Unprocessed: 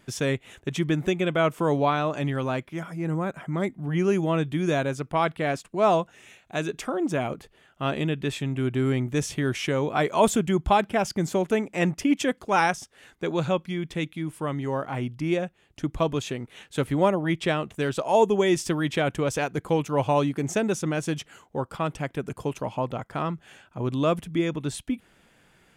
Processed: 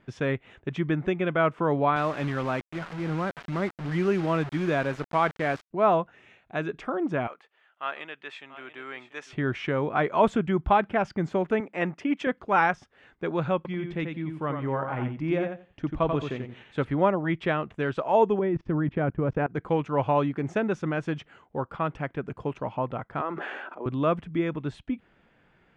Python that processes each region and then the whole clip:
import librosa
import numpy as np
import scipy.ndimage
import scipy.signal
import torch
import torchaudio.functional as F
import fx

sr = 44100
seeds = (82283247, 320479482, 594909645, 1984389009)

y = fx.chain(x, sr, fx.highpass(hz=100.0, slope=12),
    fx.quant_dither(seeds[0], bits=6, dither='none'),
    fx.high_shelf(hz=5100.0, db=9.5), at=(1.96, 5.71))
y = fx.chain(y, sr, fx.highpass(hz=920.0, slope=12),
    fx.echo_single(ms=688, db=-13.0), at=(7.27, 9.33))
y = fx.chain(y, sr, fx.highpass(hz=120.0, slope=12),
    fx.low_shelf(hz=170.0, db=-9.5), at=(11.6, 12.27))
y = fx.chain(y, sr, fx.high_shelf(hz=12000.0, db=-5.5),
    fx.echo_feedback(ms=88, feedback_pct=18, wet_db=-5.5), at=(13.56, 16.85))
y = fx.chain(y, sr, fx.lowpass(hz=2100.0, slope=12),
    fx.low_shelf(hz=470.0, db=11.5),
    fx.level_steps(step_db=23), at=(18.39, 19.55))
y = fx.chain(y, sr, fx.highpass(hz=310.0, slope=24),
    fx.high_shelf(hz=2200.0, db=-10.5),
    fx.sustainer(db_per_s=24.0), at=(23.21, 23.86))
y = scipy.signal.sosfilt(scipy.signal.butter(2, 2400.0, 'lowpass', fs=sr, output='sos'), y)
y = fx.dynamic_eq(y, sr, hz=1400.0, q=1.2, threshold_db=-41.0, ratio=4.0, max_db=4)
y = y * 10.0 ** (-2.0 / 20.0)